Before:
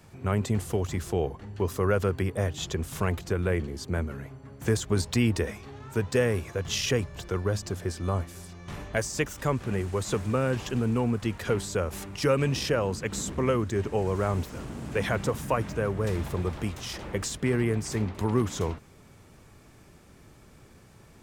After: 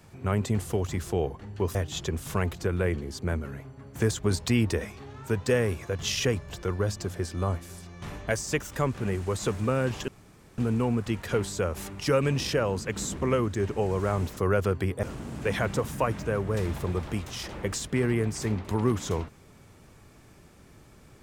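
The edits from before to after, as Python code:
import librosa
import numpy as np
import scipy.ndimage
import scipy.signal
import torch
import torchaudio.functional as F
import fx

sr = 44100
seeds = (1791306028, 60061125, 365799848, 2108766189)

y = fx.edit(x, sr, fx.move(start_s=1.75, length_s=0.66, to_s=14.53),
    fx.insert_room_tone(at_s=10.74, length_s=0.5), tone=tone)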